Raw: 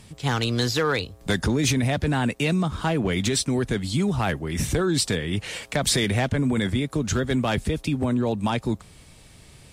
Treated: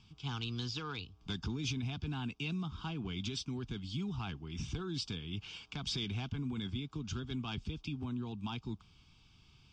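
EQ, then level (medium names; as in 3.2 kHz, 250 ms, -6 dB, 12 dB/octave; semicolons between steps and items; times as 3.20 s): dynamic bell 1.5 kHz, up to -4 dB, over -38 dBFS, Q 0.71; four-pole ladder low-pass 4.6 kHz, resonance 70%; static phaser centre 2.8 kHz, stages 8; -1.5 dB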